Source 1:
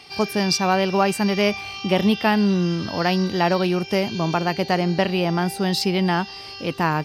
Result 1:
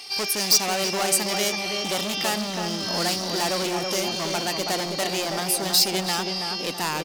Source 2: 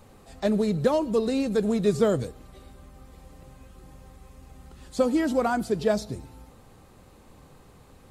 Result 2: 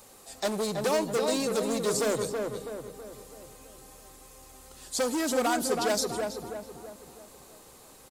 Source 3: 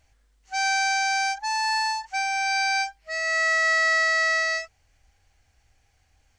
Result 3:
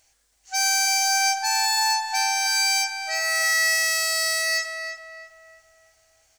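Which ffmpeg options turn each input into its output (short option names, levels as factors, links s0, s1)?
-filter_complex "[0:a]volume=13.3,asoftclip=hard,volume=0.075,bass=f=250:g=-13,treble=f=4000:g=13,asplit=2[s0][s1];[s1]adelay=326,lowpass=f=1700:p=1,volume=0.668,asplit=2[s2][s3];[s3]adelay=326,lowpass=f=1700:p=1,volume=0.5,asplit=2[s4][s5];[s5]adelay=326,lowpass=f=1700:p=1,volume=0.5,asplit=2[s6][s7];[s7]adelay=326,lowpass=f=1700:p=1,volume=0.5,asplit=2[s8][s9];[s9]adelay=326,lowpass=f=1700:p=1,volume=0.5,asplit=2[s10][s11];[s11]adelay=326,lowpass=f=1700:p=1,volume=0.5,asplit=2[s12][s13];[s13]adelay=326,lowpass=f=1700:p=1,volume=0.5[s14];[s2][s4][s6][s8][s10][s12][s14]amix=inputs=7:normalize=0[s15];[s0][s15]amix=inputs=2:normalize=0"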